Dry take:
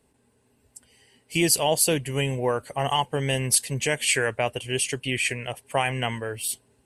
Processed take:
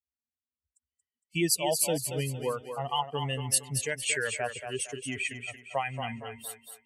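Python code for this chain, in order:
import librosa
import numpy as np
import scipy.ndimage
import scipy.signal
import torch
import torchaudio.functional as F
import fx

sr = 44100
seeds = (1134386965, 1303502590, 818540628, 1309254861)

y = fx.bin_expand(x, sr, power=2.0)
y = scipy.signal.sosfilt(scipy.signal.butter(2, 62.0, 'highpass', fs=sr, output='sos'), y)
y = fx.echo_thinned(y, sr, ms=230, feedback_pct=40, hz=310.0, wet_db=-7)
y = y * 10.0 ** (-3.0 / 20.0)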